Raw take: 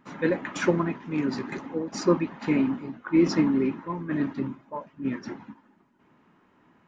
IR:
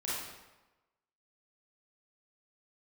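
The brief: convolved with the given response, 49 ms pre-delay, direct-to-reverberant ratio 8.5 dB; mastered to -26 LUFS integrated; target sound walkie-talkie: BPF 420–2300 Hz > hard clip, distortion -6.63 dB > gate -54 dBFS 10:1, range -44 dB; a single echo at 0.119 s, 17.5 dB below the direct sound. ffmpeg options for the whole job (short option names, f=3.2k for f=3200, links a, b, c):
-filter_complex "[0:a]aecho=1:1:119:0.133,asplit=2[a][b];[1:a]atrim=start_sample=2205,adelay=49[c];[b][c]afir=irnorm=-1:irlink=0,volume=-13dB[d];[a][d]amix=inputs=2:normalize=0,highpass=420,lowpass=2.3k,asoftclip=type=hard:threshold=-29dB,agate=range=-44dB:threshold=-54dB:ratio=10,volume=9dB"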